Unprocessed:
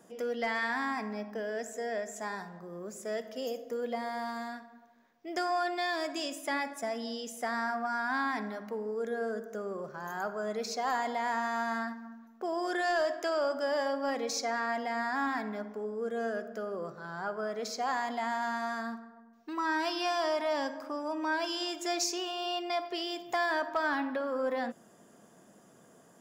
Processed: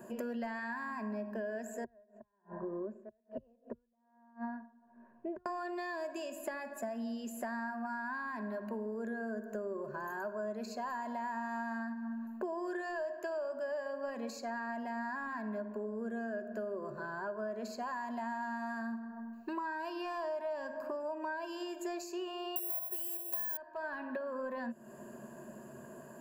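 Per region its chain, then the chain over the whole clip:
1.84–5.46 flipped gate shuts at -29 dBFS, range -35 dB + LPF 1300 Hz + tremolo 1.2 Hz, depth 91%
22.56–23.57 overdrive pedal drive 16 dB, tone 2800 Hz, clips at -21.5 dBFS + careless resampling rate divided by 4×, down none, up zero stuff + high shelf 5300 Hz +8.5 dB
whole clip: ripple EQ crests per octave 1.4, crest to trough 13 dB; compressor 6:1, threshold -44 dBFS; bell 5200 Hz -12 dB 2.2 oct; gain +7.5 dB

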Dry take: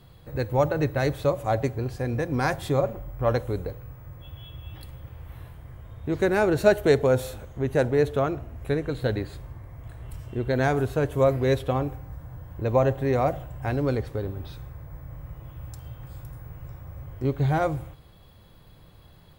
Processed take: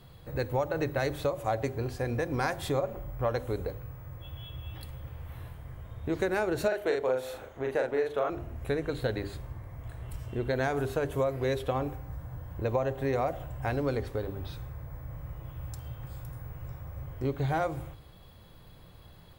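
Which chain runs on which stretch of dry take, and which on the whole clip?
6.68–8.3 tone controls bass -15 dB, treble -8 dB + doubler 39 ms -2.5 dB
whole clip: notches 50/100/150/200/250/300/350/400 Hz; dynamic EQ 160 Hz, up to -5 dB, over -37 dBFS, Q 0.77; compressor 6:1, threshold -25 dBFS

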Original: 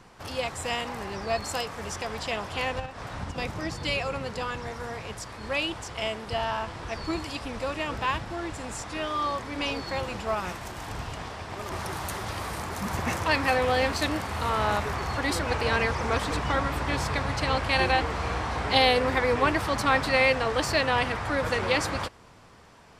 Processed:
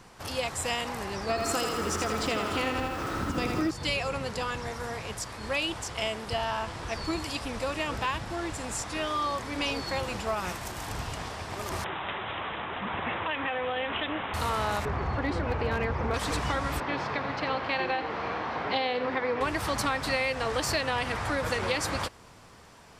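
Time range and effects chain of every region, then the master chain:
1.29–3.71 small resonant body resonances 310/1300 Hz, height 13 dB, ringing for 25 ms + lo-fi delay 82 ms, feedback 55%, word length 9-bit, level -5 dB
11.84–14.34 HPF 310 Hz 6 dB/oct + compressor 3:1, threshold -27 dBFS + careless resampling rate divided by 6×, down none, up filtered
14.85–16.14 LPF 2700 Hz + tilt shelf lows +3.5 dB, about 780 Hz + hard clip -17 dBFS
16.8–19.41 HPF 200 Hz + air absorption 260 m + echo 88 ms -13 dB
whole clip: compressor, threshold -25 dBFS; high shelf 5500 Hz +6.5 dB

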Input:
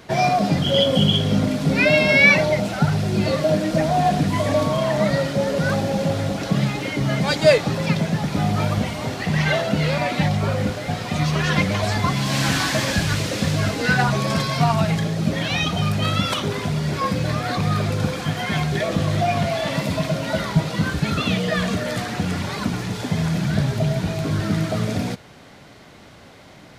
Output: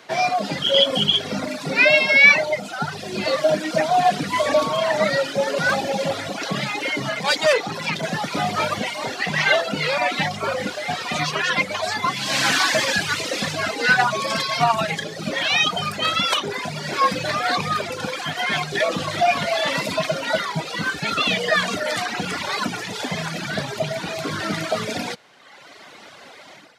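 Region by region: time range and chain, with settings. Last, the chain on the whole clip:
7.09–8.03 notches 60/120/180/240/300/360/420/480/540 Hz + tube stage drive 18 dB, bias 0.4
whole clip: AGC gain up to 7.5 dB; weighting filter A; reverb removal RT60 1.3 s

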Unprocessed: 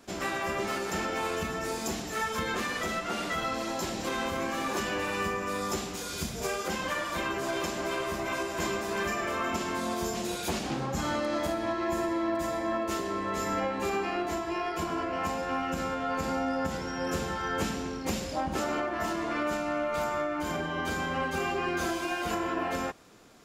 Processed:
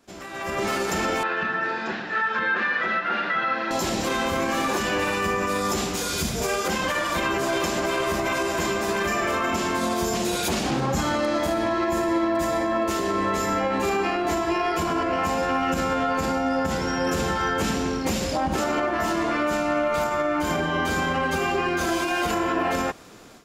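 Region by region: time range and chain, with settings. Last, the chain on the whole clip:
1.23–3.71 speaker cabinet 270–3300 Hz, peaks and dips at 280 Hz -9 dB, 440 Hz -7 dB, 680 Hz -7 dB, 1100 Hz -4 dB, 1600 Hz +9 dB, 3100 Hz -6 dB + notch 2200 Hz, Q 14
whole clip: limiter -25 dBFS; AGC gain up to 15 dB; gain -5.5 dB

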